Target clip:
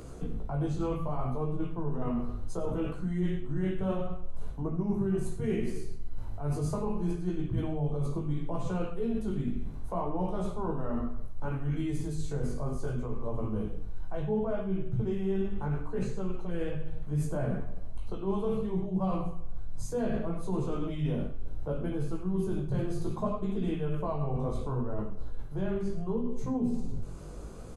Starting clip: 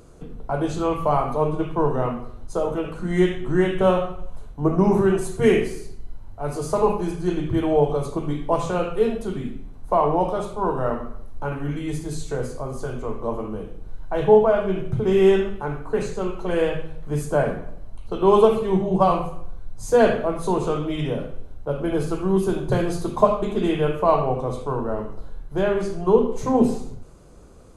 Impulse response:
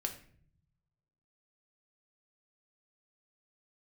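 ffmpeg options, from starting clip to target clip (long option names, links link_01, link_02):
-filter_complex "[0:a]acrossover=split=240[link_01][link_02];[link_02]acompressor=threshold=-57dB:ratio=1.5[link_03];[link_01][link_03]amix=inputs=2:normalize=0,flanger=delay=15.5:depth=5.3:speed=0.68,aecho=1:1:99:0.211,areverse,acompressor=threshold=-35dB:ratio=6,areverse,volume=8dB"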